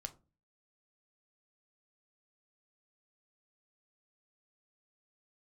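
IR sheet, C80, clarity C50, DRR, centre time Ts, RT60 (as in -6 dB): 24.5 dB, 18.0 dB, 8.0 dB, 4 ms, 0.30 s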